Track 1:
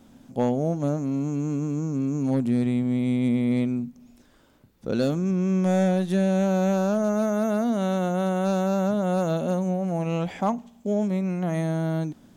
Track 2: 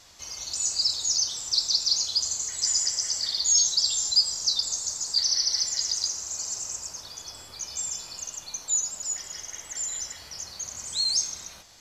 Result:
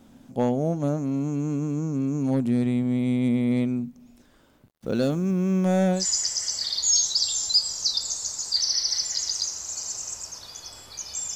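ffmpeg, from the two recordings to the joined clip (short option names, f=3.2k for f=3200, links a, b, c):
-filter_complex "[0:a]asettb=1/sr,asplit=3[a][b][c];[a]atrim=end=4.674[d];[b]atrim=start=4.67:end=6.06,asetpts=PTS-STARTPTS,afade=t=in:d=0.004:c=qsin,afade=t=out:st=1.386:d=0.004:c=qsin,acrusher=bits=8:mix=0:aa=0.5[e];[c]atrim=start=6.056[f];[d][e]acrossfade=d=0.004:c1=hsin:c2=qsin[g];[g][f]acrossfade=d=0.004:c1=qsin:c2=hsin,apad=whole_dur=11.35,atrim=end=11.35,atrim=end=6.06,asetpts=PTS-STARTPTS[h];[1:a]atrim=start=2.54:end=7.97,asetpts=PTS-STARTPTS[i];[h][i]acrossfade=d=0.14:c1=tri:c2=tri"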